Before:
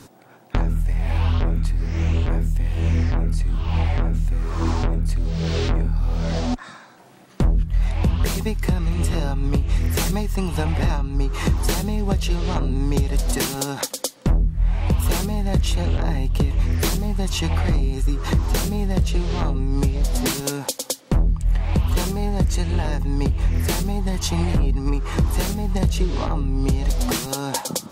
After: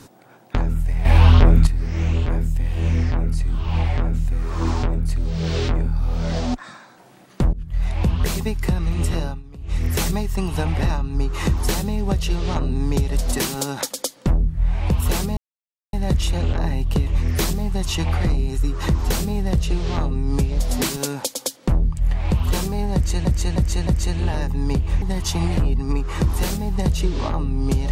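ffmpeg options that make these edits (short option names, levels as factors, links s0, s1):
-filter_complex "[0:a]asplit=11[s0][s1][s2][s3][s4][s5][s6][s7][s8][s9][s10];[s0]atrim=end=1.052[s11];[s1]atrim=start=1.048:end=1.672,asetpts=PTS-STARTPTS,volume=2.66[s12];[s2]atrim=start=1.668:end=7.53,asetpts=PTS-STARTPTS,afade=t=out:st=5.858:d=0.004:c=hsin:silence=0.0891251[s13];[s3]atrim=start=7.53:end=9.43,asetpts=PTS-STARTPTS,afade=t=in:d=0.48:c=qsin:silence=0.0891251,afade=t=out:st=1.57:d=0.33:c=qsin:silence=0.1[s14];[s4]atrim=start=9.43:end=9.58,asetpts=PTS-STARTPTS,volume=0.1[s15];[s5]atrim=start=9.58:end=15.37,asetpts=PTS-STARTPTS,afade=t=in:d=0.33:c=qsin:silence=0.1,afade=t=out:st=5.786:d=0.004:c=hsin,apad=pad_dur=0.56[s16];[s6]atrim=start=15.37:end=22.692,asetpts=PTS-STARTPTS,afade=t=in:d=0.004:c=hsin[s17];[s7]atrim=start=22.378:end=22.692[s18];[s8]atrim=start=22.378:end=22.692[s19];[s9]atrim=start=22.378:end=23.532[s20];[s10]atrim=start=23.988[s21];[s11][s12]acrossfade=d=0.004:c1=hsin:c2=hsin[s22];[s13][s14][s15][s16][s17]concat=n=5:v=0:a=1[s23];[s22][s23]acrossfade=d=0.004:c1=hsin:c2=hsin[s24];[s24][s18]acrossfade=d=0.004:c1=hsin:c2=hsin[s25];[s25][s19]acrossfade=d=0.004:c1=hsin:c2=hsin[s26];[s26][s20]acrossfade=d=0.004:c1=hsin:c2=hsin[s27];[s27][s21]acrossfade=d=0.004:c1=hsin:c2=hsin"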